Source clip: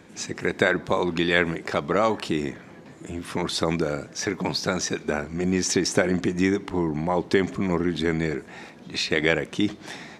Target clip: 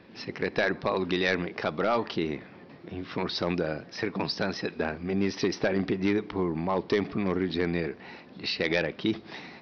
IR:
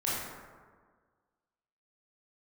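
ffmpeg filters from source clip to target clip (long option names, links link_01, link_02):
-af "aresample=11025,asoftclip=type=hard:threshold=-14dB,aresample=44100,asetrate=46746,aresample=44100,volume=-3.5dB"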